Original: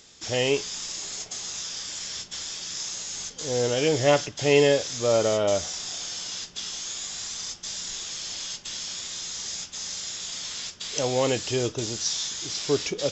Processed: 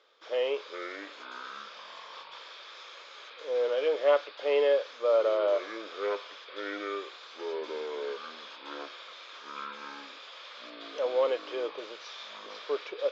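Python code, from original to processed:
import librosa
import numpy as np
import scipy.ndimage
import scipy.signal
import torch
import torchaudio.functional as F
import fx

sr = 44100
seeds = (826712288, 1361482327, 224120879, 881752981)

y = fx.echo_pitch(x, sr, ms=271, semitones=-6, count=3, db_per_echo=-6.0)
y = fx.cabinet(y, sr, low_hz=470.0, low_slope=24, high_hz=3000.0, hz=(520.0, 770.0, 1200.0, 1900.0, 2700.0), db=(5, -7, 5, -7, -8))
y = y * librosa.db_to_amplitude(-3.0)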